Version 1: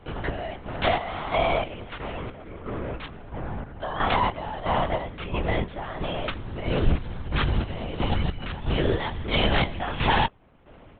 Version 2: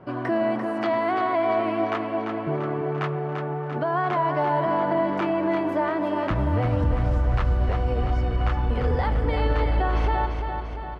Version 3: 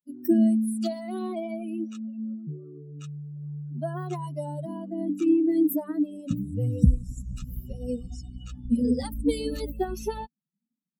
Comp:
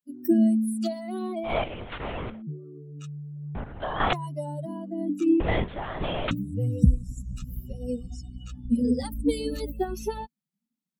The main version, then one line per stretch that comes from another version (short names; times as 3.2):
3
1.51–2.35 from 1, crossfade 0.16 s
3.55–4.13 from 1
5.4–6.31 from 1
not used: 2